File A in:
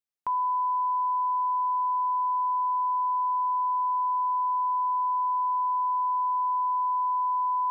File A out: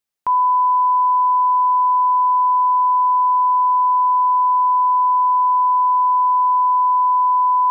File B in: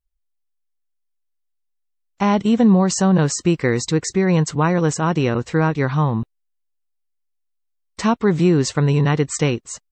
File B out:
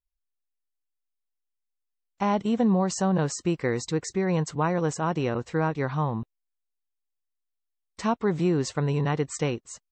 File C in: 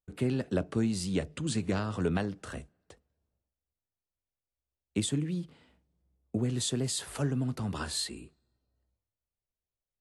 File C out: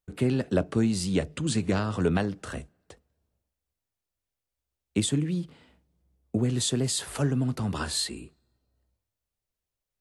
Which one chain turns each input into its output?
dynamic equaliser 710 Hz, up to +5 dB, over −30 dBFS, Q 0.9
normalise the peak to −12 dBFS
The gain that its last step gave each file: +8.5, −9.5, +4.5 decibels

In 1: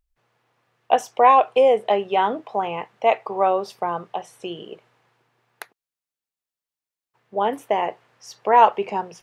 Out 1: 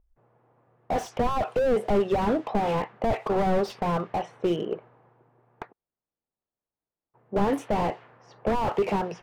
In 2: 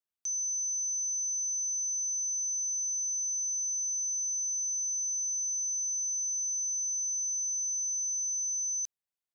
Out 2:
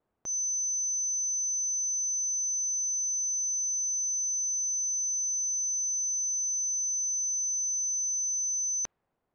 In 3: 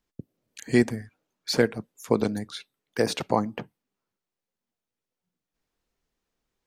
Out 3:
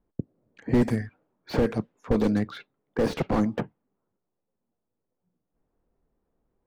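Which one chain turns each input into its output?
low-pass that shuts in the quiet parts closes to 780 Hz, open at −18.5 dBFS
in parallel at −2.5 dB: downward compressor, threshold −27 dBFS
on the sum: slew-rate limiting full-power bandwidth 31 Hz
loudness normalisation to −27 LKFS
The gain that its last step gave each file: +3.5, +20.5, +3.5 decibels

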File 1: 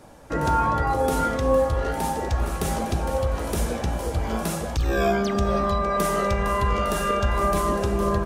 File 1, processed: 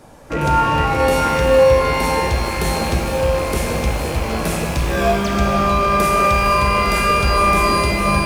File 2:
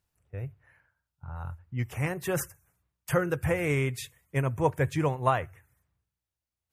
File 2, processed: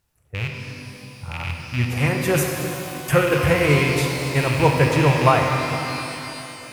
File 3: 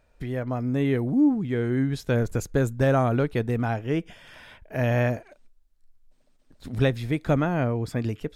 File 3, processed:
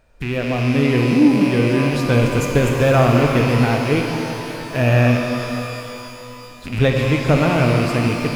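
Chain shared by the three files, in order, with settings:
loose part that buzzes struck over −34 dBFS, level −25 dBFS
reverb with rising layers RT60 3.2 s, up +12 semitones, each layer −8 dB, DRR 1.5 dB
normalise the peak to −2 dBFS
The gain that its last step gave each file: +3.5, +7.5, +6.0 decibels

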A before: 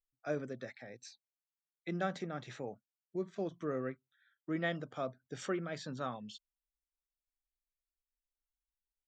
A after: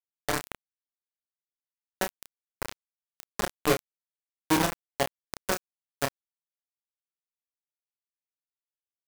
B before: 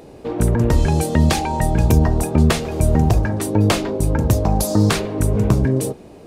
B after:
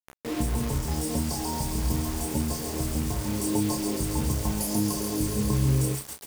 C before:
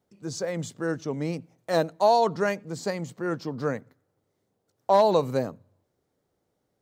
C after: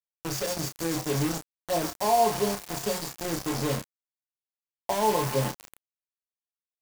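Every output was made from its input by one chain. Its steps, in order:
in parallel at −7 dB: log-companded quantiser 4 bits
on the sum: downward compressor 12 to 1, threshold −14 dBFS
on a send: delay with a high-pass on its return 137 ms, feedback 80%, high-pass 1,500 Hz, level −3.5 dB
on the sum: brick-wall band-stop 1,100–4,300 Hz
dynamic equaliser 630 Hz, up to −4 dB, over −34 dBFS, Q 1.4
stiff-string resonator 64 Hz, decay 0.29 s, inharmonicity 0.03
hum removal 63.63 Hz, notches 6
bit reduction 6 bits
double-tracking delay 30 ms −6.5 dB
normalise the peak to −12 dBFS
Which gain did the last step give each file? +14.5, −0.5, +5.0 decibels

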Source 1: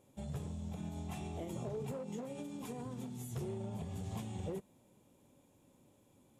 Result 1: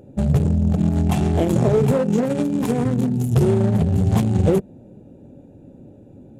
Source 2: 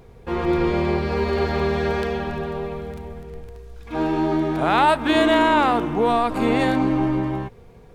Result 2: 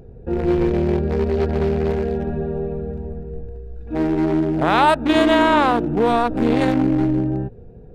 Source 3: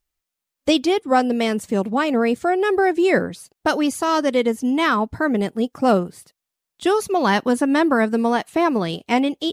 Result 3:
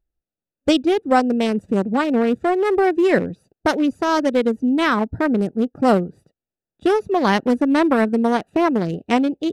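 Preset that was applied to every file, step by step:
adaptive Wiener filter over 41 samples
in parallel at −2 dB: downward compressor, threshold −27 dBFS
on the sum: loudness normalisation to −19 LKFS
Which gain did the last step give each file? +20.0, +1.5, +0.5 decibels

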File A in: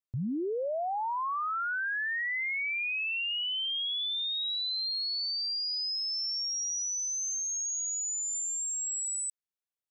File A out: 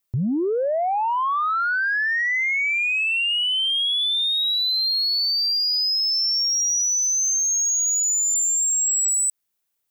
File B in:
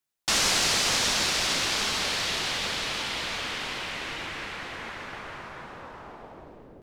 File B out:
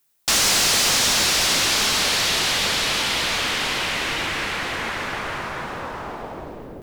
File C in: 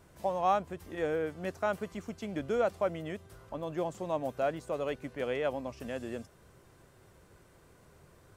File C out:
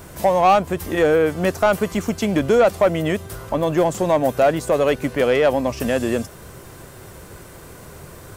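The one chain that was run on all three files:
high-shelf EQ 9,700 Hz +10 dB
in parallel at −3 dB: downward compressor, threshold −35 dBFS
on the sum: soft clipping −21.5 dBFS
loudness normalisation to −19 LKFS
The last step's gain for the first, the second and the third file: +7.5, +7.0, +14.5 decibels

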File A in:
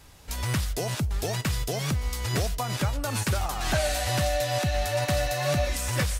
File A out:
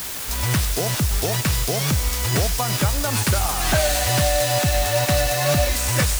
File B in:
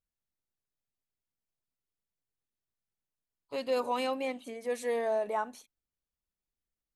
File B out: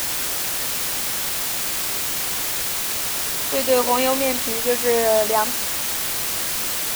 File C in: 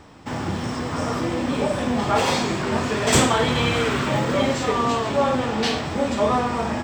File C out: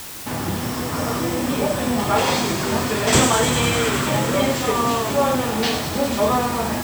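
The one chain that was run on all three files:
delay with a high-pass on its return 100 ms, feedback 84%, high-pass 5,500 Hz, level −3.5 dB
bit-depth reduction 6 bits, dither triangular
loudness normalisation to −20 LKFS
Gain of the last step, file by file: +6.0, +11.5, +1.5 decibels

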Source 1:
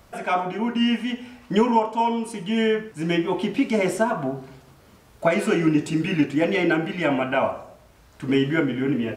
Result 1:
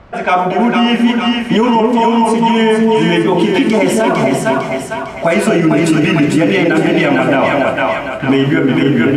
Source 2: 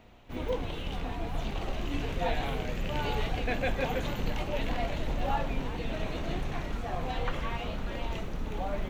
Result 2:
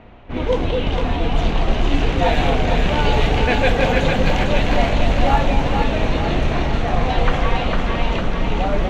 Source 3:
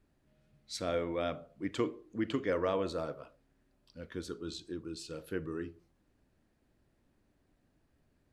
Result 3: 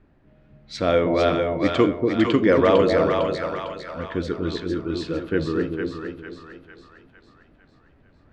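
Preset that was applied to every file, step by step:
low-pass that shuts in the quiet parts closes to 2,300 Hz, open at −22 dBFS
echo with a time of its own for lows and highs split 730 Hz, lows 237 ms, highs 453 ms, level −3.5 dB
brickwall limiter −15.5 dBFS
normalise the peak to −3 dBFS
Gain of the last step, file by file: +12.5, +12.5, +14.0 decibels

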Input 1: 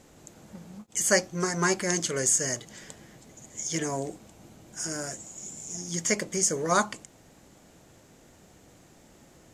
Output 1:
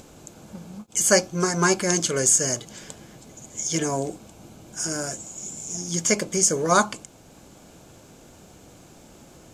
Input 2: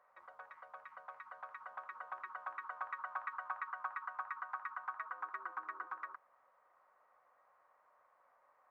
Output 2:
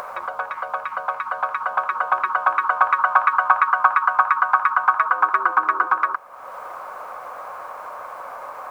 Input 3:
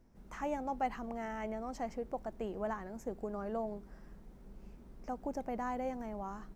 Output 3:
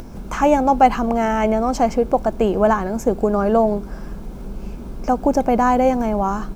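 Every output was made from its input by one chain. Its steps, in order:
notch filter 1,900 Hz, Q 5.6
upward compression, threshold −49 dBFS
normalise the peak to −2 dBFS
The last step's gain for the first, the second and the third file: +5.5, +26.5, +22.0 decibels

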